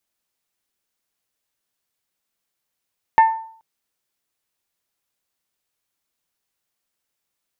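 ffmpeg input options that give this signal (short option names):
-f lavfi -i "aevalsrc='0.501*pow(10,-3*t/0.55)*sin(2*PI*894*t)+0.141*pow(10,-3*t/0.339)*sin(2*PI*1788*t)+0.0398*pow(10,-3*t/0.298)*sin(2*PI*2145.6*t)+0.0112*pow(10,-3*t/0.255)*sin(2*PI*2682*t)+0.00316*pow(10,-3*t/0.208)*sin(2*PI*3576*t)':d=0.43:s=44100"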